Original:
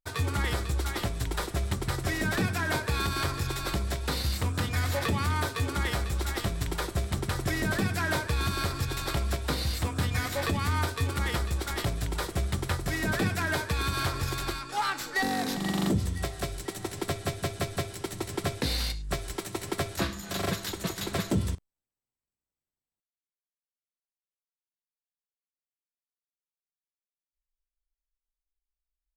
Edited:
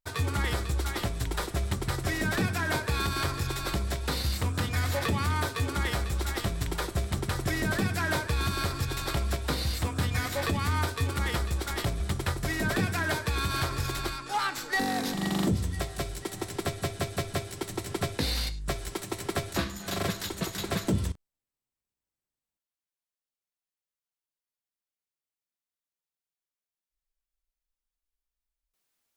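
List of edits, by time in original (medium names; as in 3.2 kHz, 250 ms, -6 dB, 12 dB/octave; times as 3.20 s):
12.00–12.43 s: delete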